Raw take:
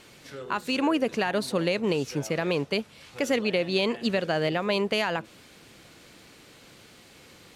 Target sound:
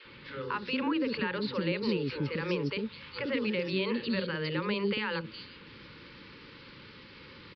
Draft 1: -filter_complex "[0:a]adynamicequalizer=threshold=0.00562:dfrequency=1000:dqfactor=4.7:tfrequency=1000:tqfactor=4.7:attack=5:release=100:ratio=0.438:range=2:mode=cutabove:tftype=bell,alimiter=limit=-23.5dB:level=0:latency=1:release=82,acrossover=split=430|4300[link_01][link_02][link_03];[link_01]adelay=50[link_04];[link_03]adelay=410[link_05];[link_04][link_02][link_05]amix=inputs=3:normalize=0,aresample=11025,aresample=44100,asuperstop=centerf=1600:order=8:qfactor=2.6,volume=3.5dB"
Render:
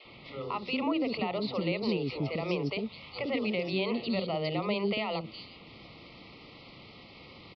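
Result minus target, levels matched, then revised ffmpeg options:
2,000 Hz band −3.0 dB
-filter_complex "[0:a]adynamicequalizer=threshold=0.00562:dfrequency=1000:dqfactor=4.7:tfrequency=1000:tqfactor=4.7:attack=5:release=100:ratio=0.438:range=2:mode=cutabove:tftype=bell,alimiter=limit=-23.5dB:level=0:latency=1:release=82,acrossover=split=430|4300[link_01][link_02][link_03];[link_01]adelay=50[link_04];[link_03]adelay=410[link_05];[link_04][link_02][link_05]amix=inputs=3:normalize=0,aresample=11025,aresample=44100,asuperstop=centerf=700:order=8:qfactor=2.6,volume=3.5dB"

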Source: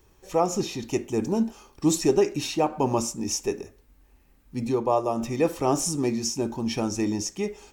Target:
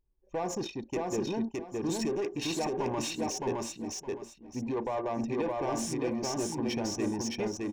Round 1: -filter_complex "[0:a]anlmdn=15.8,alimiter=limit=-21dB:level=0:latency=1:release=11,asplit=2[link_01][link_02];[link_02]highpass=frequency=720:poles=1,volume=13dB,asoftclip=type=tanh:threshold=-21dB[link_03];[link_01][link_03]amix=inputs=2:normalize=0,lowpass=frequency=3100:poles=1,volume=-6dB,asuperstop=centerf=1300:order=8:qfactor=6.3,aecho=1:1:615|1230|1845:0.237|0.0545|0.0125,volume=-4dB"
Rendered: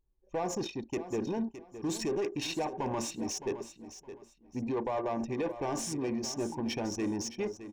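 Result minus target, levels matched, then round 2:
echo-to-direct −10.5 dB
-filter_complex "[0:a]anlmdn=15.8,alimiter=limit=-21dB:level=0:latency=1:release=11,asplit=2[link_01][link_02];[link_02]highpass=frequency=720:poles=1,volume=13dB,asoftclip=type=tanh:threshold=-21dB[link_03];[link_01][link_03]amix=inputs=2:normalize=0,lowpass=frequency=3100:poles=1,volume=-6dB,asuperstop=centerf=1300:order=8:qfactor=6.3,aecho=1:1:615|1230|1845:0.794|0.183|0.042,volume=-4dB"

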